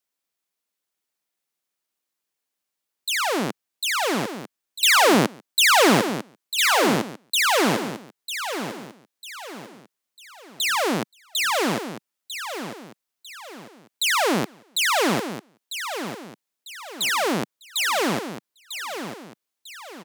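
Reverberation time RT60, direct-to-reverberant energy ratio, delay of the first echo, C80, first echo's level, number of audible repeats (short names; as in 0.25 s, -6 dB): none, none, 0.948 s, none, -9.5 dB, 3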